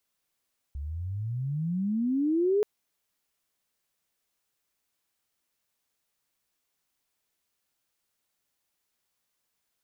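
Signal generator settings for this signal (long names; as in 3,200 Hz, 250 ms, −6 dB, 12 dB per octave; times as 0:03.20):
pitch glide with a swell sine, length 1.88 s, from 67.4 Hz, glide +32 semitones, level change +12 dB, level −20.5 dB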